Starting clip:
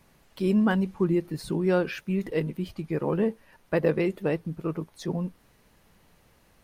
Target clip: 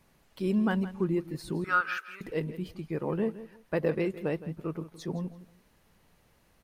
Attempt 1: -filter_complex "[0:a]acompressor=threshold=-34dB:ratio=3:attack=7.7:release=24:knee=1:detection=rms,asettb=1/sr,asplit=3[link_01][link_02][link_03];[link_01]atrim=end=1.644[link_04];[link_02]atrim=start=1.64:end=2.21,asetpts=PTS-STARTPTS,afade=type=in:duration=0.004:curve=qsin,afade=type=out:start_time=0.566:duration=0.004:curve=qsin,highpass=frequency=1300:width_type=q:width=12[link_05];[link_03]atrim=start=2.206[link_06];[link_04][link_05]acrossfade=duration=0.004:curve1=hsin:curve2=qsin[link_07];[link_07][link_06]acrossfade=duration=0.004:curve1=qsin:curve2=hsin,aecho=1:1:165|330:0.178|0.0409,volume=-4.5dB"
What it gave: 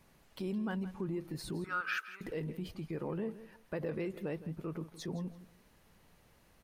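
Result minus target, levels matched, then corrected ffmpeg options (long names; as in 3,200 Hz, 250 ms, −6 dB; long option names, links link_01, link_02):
downward compressor: peak gain reduction +12 dB
-filter_complex "[0:a]asettb=1/sr,asplit=3[link_01][link_02][link_03];[link_01]atrim=end=1.644[link_04];[link_02]atrim=start=1.64:end=2.21,asetpts=PTS-STARTPTS,afade=type=in:duration=0.004:curve=qsin,afade=type=out:start_time=0.566:duration=0.004:curve=qsin,highpass=frequency=1300:width_type=q:width=12[link_05];[link_03]atrim=start=2.206[link_06];[link_04][link_05]acrossfade=duration=0.004:curve1=hsin:curve2=qsin[link_07];[link_07][link_06]acrossfade=duration=0.004:curve1=qsin:curve2=hsin,aecho=1:1:165|330:0.178|0.0409,volume=-4.5dB"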